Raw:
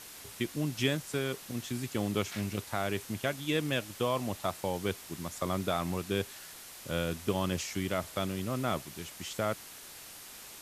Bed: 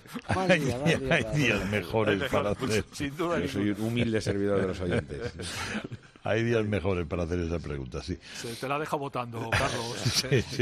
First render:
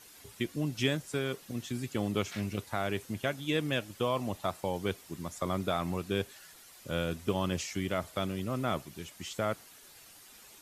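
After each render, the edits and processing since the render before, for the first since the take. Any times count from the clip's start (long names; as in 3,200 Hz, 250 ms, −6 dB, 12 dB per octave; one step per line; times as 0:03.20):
broadband denoise 9 dB, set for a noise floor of −49 dBFS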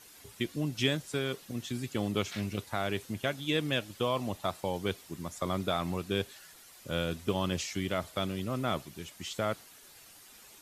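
dynamic equaliser 3,800 Hz, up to +4 dB, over −52 dBFS, Q 1.8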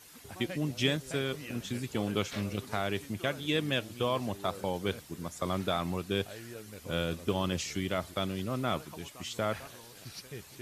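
mix in bed −19.5 dB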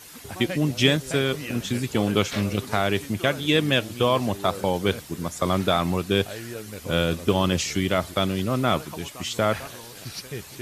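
level +9.5 dB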